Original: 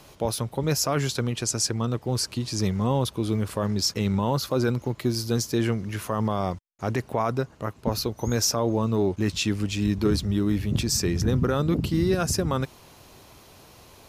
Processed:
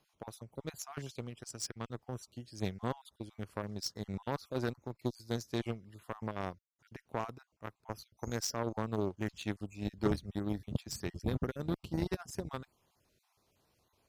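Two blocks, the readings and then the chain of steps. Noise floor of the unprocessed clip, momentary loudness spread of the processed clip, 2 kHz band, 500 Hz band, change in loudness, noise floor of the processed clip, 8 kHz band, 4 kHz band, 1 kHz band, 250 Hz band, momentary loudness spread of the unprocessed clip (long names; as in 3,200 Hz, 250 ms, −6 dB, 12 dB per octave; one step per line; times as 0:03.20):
−51 dBFS, 11 LU, −11.5 dB, −13.0 dB, −14.0 dB, −79 dBFS, −17.0 dB, −16.0 dB, −12.5 dB, −13.5 dB, 5 LU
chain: time-frequency cells dropped at random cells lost 27%
harmonic generator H 3 −12 dB, 5 −36 dB, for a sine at −12 dBFS
expander for the loud parts 1.5 to 1, over −41 dBFS
level −4 dB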